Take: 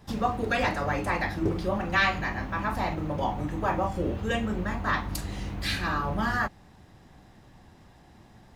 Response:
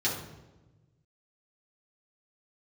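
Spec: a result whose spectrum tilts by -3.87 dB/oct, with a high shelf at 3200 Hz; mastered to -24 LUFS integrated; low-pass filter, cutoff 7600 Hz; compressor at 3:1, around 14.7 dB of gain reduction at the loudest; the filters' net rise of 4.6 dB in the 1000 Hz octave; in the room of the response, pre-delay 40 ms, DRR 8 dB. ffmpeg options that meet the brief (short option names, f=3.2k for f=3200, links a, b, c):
-filter_complex "[0:a]lowpass=7.6k,equalizer=f=1k:t=o:g=5,highshelf=f=3.2k:g=8.5,acompressor=threshold=-36dB:ratio=3,asplit=2[a][b];[1:a]atrim=start_sample=2205,adelay=40[c];[b][c]afir=irnorm=-1:irlink=0,volume=-17dB[d];[a][d]amix=inputs=2:normalize=0,volume=11.5dB"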